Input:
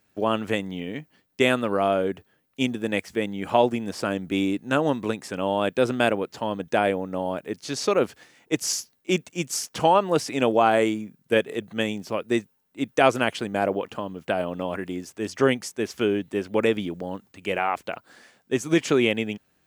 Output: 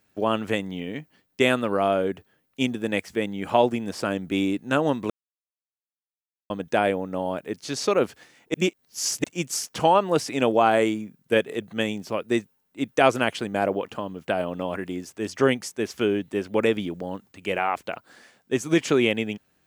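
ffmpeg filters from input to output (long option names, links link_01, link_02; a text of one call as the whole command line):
ffmpeg -i in.wav -filter_complex "[0:a]asplit=5[link_01][link_02][link_03][link_04][link_05];[link_01]atrim=end=5.1,asetpts=PTS-STARTPTS,afade=type=out:start_time=5.096:duration=0.004:curve=hsin[link_06];[link_02]atrim=start=5.1:end=6.5,asetpts=PTS-STARTPTS,volume=0[link_07];[link_03]atrim=start=6.5:end=8.542,asetpts=PTS-STARTPTS,afade=type=in:duration=0.004:curve=hsin[link_08];[link_04]atrim=start=8.538:end=9.242,asetpts=PTS-STARTPTS,areverse[link_09];[link_05]atrim=start=9.238[link_10];[link_06][link_07][link_08]concat=n=3:v=0:a=1[link_11];[link_11][link_09]acrossfade=duration=0.004:curve1=hsin:curve2=hsin[link_12];[link_12][link_10]acrossfade=duration=0.004:curve1=hsin:curve2=hsin" out.wav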